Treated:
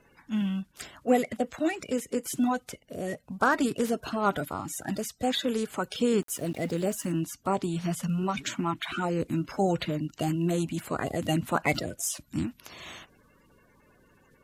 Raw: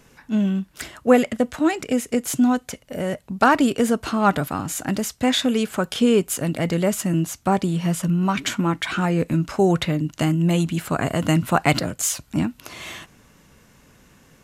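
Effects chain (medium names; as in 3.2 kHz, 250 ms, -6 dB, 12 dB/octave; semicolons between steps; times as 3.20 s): coarse spectral quantiser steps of 30 dB; 6.22–7.12 s: small samples zeroed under -38.5 dBFS; trim -7.5 dB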